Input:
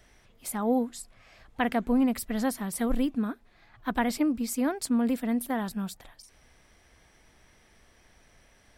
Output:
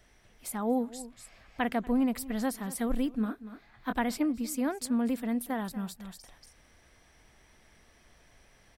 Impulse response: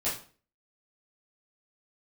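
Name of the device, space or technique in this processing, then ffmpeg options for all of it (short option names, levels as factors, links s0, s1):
ducked delay: -filter_complex "[0:a]asettb=1/sr,asplit=3[s0][s1][s2];[s0]atrim=end=3.154[s3];[s1]atrim=start=3.15:end=3.93,asetpts=PTS-STARTPTS,afade=t=in:d=0.004:c=qsin,afade=t=out:st=0.776:d=0.004:c=qsin,asplit=2[s4][s5];[s5]adelay=23,volume=0.447[s6];[s4][s6]amix=inputs=2:normalize=0,atrim=end_sample=34398[s7];[s2]atrim=start=3.926[s8];[s3][s7]acrossfade=d=0.004:c1=hsin:c2=qsin[s9];[s9][s8]acrossfade=d=0.004:c1=qsin:c2=hsin,asplit=3[s10][s11][s12];[s11]adelay=237,volume=0.794[s13];[s12]apad=whole_len=397285[s14];[s13][s14]sidechaincompress=threshold=0.00562:ratio=10:attack=16:release=341[s15];[s10][s15]amix=inputs=2:normalize=0,volume=0.708"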